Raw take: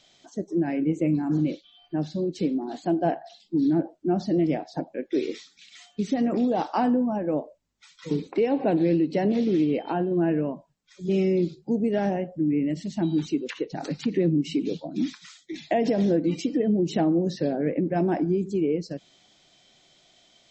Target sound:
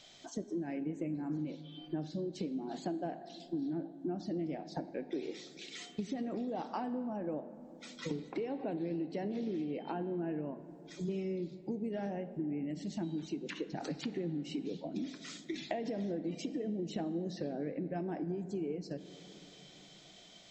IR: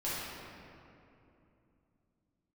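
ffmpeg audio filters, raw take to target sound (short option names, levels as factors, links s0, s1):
-filter_complex "[0:a]acompressor=threshold=0.0126:ratio=6,asplit=2[s0][s1];[1:a]atrim=start_sample=2205,asetrate=33516,aresample=44100[s2];[s1][s2]afir=irnorm=-1:irlink=0,volume=0.106[s3];[s0][s3]amix=inputs=2:normalize=0,volume=1.12"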